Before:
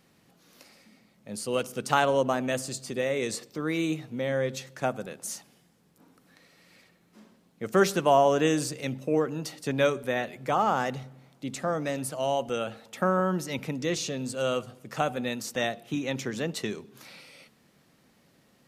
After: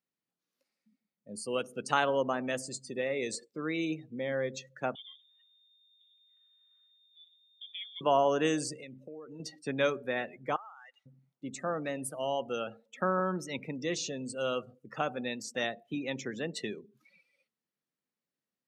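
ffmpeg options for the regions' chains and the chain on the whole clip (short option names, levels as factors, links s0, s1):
-filter_complex "[0:a]asettb=1/sr,asplit=3[s0][s1][s2];[s0]atrim=end=4.954[s3];[s1]atrim=start=4.95:end=8.01,asetpts=PTS-STARTPTS,afade=t=in:d=0.004:c=qsin,afade=t=out:st=3.056:d=0.004:c=qsin,acompressor=threshold=0.00794:ratio=3:attack=3.2:release=140:knee=1:detection=peak,aeval=exprs='val(0)+0.00158*(sin(2*PI*50*n/s)+sin(2*PI*2*50*n/s)/2+sin(2*PI*3*50*n/s)/3+sin(2*PI*4*50*n/s)/4+sin(2*PI*5*50*n/s)/5)':c=same,lowpass=f=3100:t=q:w=0.5098,lowpass=f=3100:t=q:w=0.6013,lowpass=f=3100:t=q:w=0.9,lowpass=f=3100:t=q:w=2.563,afreqshift=-3700[s4];[s2]atrim=start=8.006[s5];[s3][s4]acrossfade=d=0.004:c1=hsin:c2=qsin[s6];[s6][s5]acrossfade=d=0.004:c1=qsin:c2=hsin,asettb=1/sr,asplit=3[s7][s8][s9];[s7]atrim=end=8.824[s10];[s8]atrim=start=8.82:end=9.4,asetpts=PTS-STARTPTS,afade=t=in:d=0.004:c=qsin,afade=t=out:st=0.576:d=0.004:c=qsin,equalizer=f=170:w=0.4:g=-4.5,acompressor=threshold=0.0158:ratio=10:attack=3.2:release=140:knee=1:detection=peak[s11];[s9]atrim=start=9.396[s12];[s10][s11]acrossfade=d=0.004:c1=hsin:c2=qsin[s13];[s13][s12]acrossfade=d=0.004:c1=qsin:c2=hsin,asettb=1/sr,asplit=3[s14][s15][s16];[s14]atrim=end=10.564[s17];[s15]atrim=start=10.56:end=11.06,asetpts=PTS-STARTPTS,afade=t=in:d=0.004:c=qsin,afade=t=out:st=0.496:d=0.004:c=qsin,highpass=1300,acompressor=threshold=0.01:ratio=10:attack=3.2:release=140:knee=1:detection=peak[s18];[s16]atrim=start=11.056[s19];[s17][s18]acrossfade=d=0.004:c1=hsin:c2=qsin[s20];[s20][s19]acrossfade=d=0.004:c1=qsin:c2=hsin,afftdn=nr=27:nf=-40,highpass=f=240:p=1,equalizer=f=710:t=o:w=0.77:g=-3,volume=0.75"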